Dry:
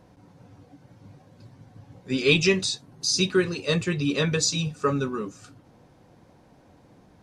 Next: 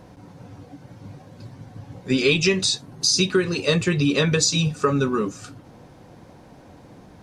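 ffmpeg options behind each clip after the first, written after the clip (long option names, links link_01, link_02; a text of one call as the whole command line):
ffmpeg -i in.wav -af "acompressor=threshold=-25dB:ratio=4,volume=8.5dB" out.wav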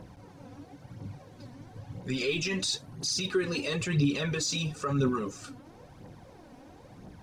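ffmpeg -i in.wav -af "alimiter=limit=-17dB:level=0:latency=1:release=16,aphaser=in_gain=1:out_gain=1:delay=4.2:decay=0.52:speed=0.99:type=triangular,volume=-5.5dB" out.wav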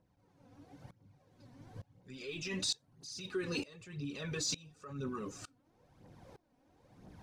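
ffmpeg -i in.wav -af "aeval=exprs='val(0)*pow(10,-24*if(lt(mod(-1.1*n/s,1),2*abs(-1.1)/1000),1-mod(-1.1*n/s,1)/(2*abs(-1.1)/1000),(mod(-1.1*n/s,1)-2*abs(-1.1)/1000)/(1-2*abs(-1.1)/1000))/20)':channel_layout=same,volume=-2.5dB" out.wav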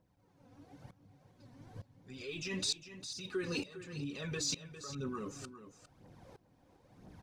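ffmpeg -i in.wav -af "aecho=1:1:404:0.237" out.wav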